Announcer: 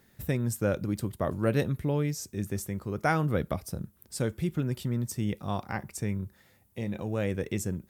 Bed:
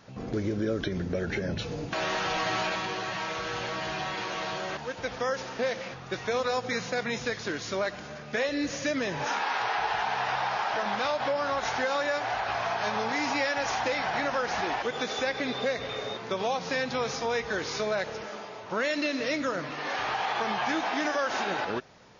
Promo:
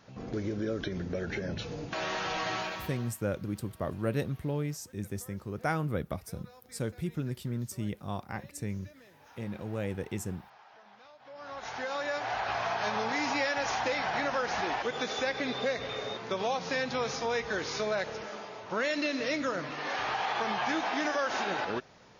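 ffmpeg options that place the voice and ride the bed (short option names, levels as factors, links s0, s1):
-filter_complex "[0:a]adelay=2600,volume=0.596[s0];[1:a]volume=11.2,afade=t=out:st=2.51:d=0.66:silence=0.0707946,afade=t=in:st=11.24:d=1.21:silence=0.0562341[s1];[s0][s1]amix=inputs=2:normalize=0"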